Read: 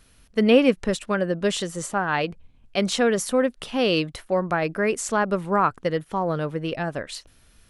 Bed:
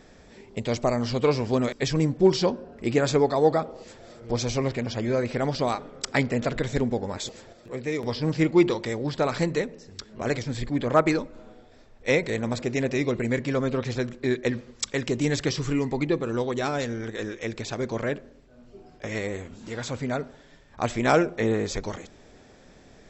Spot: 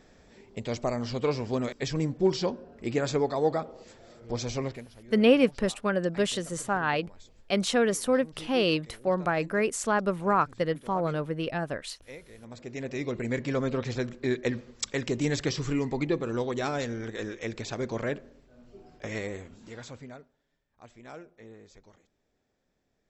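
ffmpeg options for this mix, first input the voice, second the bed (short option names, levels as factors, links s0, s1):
-filter_complex "[0:a]adelay=4750,volume=0.668[s0];[1:a]volume=5.31,afade=t=out:st=4.63:d=0.25:silence=0.133352,afade=t=in:st=12.38:d=1.14:silence=0.1,afade=t=out:st=19.05:d=1.24:silence=0.0794328[s1];[s0][s1]amix=inputs=2:normalize=0"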